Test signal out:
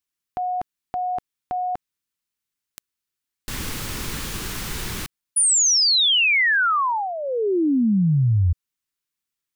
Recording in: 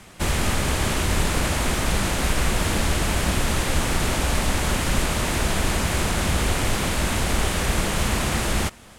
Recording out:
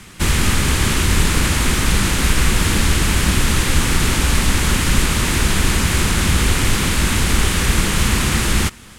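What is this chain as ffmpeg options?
ffmpeg -i in.wav -af "equalizer=frequency=650:width=1.6:gain=-11.5,volume=7dB" out.wav

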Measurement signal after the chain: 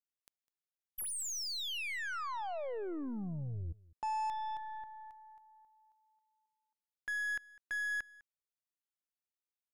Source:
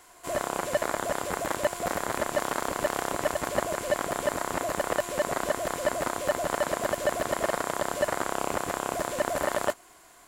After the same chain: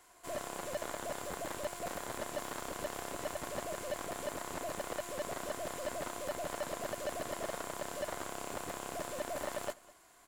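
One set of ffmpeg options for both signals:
ffmpeg -i in.wav -af "asoftclip=type=tanh:threshold=-22.5dB,aeval=exprs='0.075*(cos(1*acos(clip(val(0)/0.075,-1,1)))-cos(1*PI/2))+0.00596*(cos(8*acos(clip(val(0)/0.075,-1,1)))-cos(8*PI/2))':channel_layout=same,aecho=1:1:203:0.0794,volume=-8dB" out.wav

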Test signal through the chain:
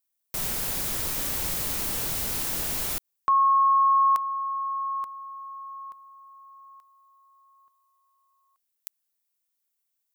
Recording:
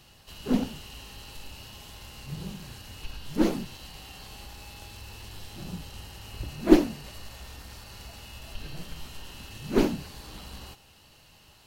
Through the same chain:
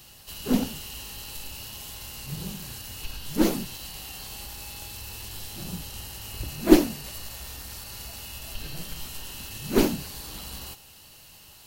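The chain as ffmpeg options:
ffmpeg -i in.wav -af "aemphasis=mode=production:type=50kf,volume=1.5dB" out.wav

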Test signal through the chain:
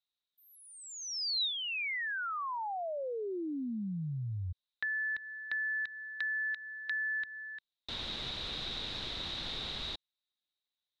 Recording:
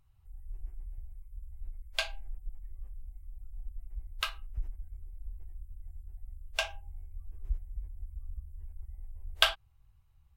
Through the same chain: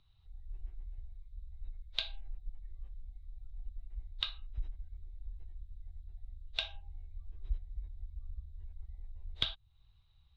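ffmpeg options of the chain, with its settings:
ffmpeg -i in.wav -filter_complex "[0:a]aeval=exprs='clip(val(0),-1,0.0841)':channel_layout=same,lowpass=frequency=3800:width_type=q:width=12,acrossover=split=210[link_01][link_02];[link_02]acompressor=threshold=-31dB:ratio=5[link_03];[link_01][link_03]amix=inputs=2:normalize=0,volume=-2.5dB" out.wav

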